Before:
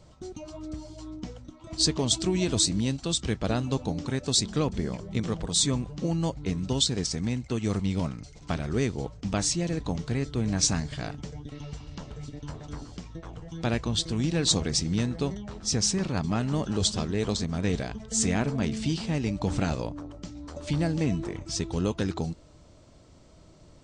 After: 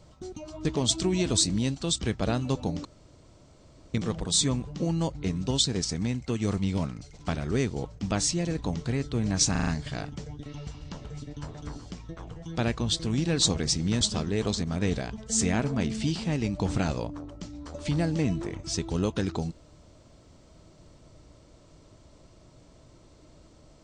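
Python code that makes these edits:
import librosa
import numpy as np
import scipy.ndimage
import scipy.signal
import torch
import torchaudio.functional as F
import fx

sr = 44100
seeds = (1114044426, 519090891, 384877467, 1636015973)

y = fx.edit(x, sr, fx.cut(start_s=0.65, length_s=1.22),
    fx.room_tone_fill(start_s=4.07, length_s=1.09),
    fx.stutter(start_s=10.73, slice_s=0.04, count=5),
    fx.cut(start_s=15.07, length_s=1.76), tone=tone)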